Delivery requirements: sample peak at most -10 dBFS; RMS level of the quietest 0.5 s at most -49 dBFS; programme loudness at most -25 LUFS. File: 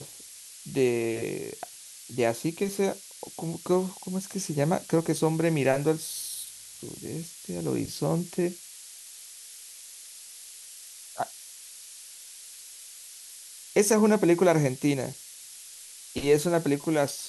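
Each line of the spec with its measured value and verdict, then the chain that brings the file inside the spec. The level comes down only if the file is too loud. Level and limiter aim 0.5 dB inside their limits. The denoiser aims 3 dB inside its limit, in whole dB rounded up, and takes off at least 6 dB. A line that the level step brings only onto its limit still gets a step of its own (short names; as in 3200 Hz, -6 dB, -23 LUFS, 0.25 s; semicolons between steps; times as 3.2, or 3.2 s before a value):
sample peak -9.0 dBFS: fail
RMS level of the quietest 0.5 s -46 dBFS: fail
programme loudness -27.5 LUFS: OK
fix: denoiser 6 dB, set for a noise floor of -46 dBFS; limiter -10.5 dBFS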